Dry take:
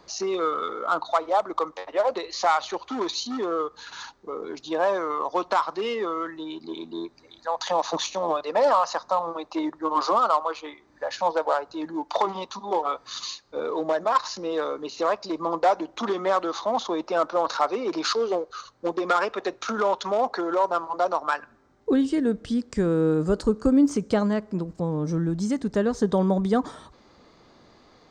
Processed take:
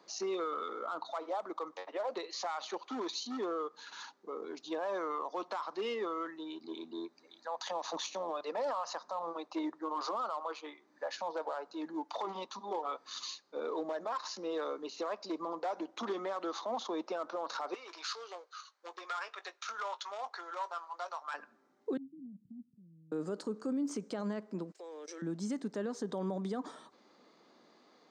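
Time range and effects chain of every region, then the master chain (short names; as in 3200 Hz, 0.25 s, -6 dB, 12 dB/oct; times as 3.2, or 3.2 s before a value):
17.74–21.34 HPF 1200 Hz + doubler 20 ms -13 dB
21.97–23.12 inverse Chebyshev low-pass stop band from 550 Hz, stop band 60 dB + negative-ratio compressor -40 dBFS
24.72–25.22 steep high-pass 360 Hz 48 dB/oct + resonant high shelf 1500 Hz +9.5 dB, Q 1.5 + level quantiser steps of 19 dB
whole clip: HPF 200 Hz 24 dB/oct; limiter -20 dBFS; gain -8.5 dB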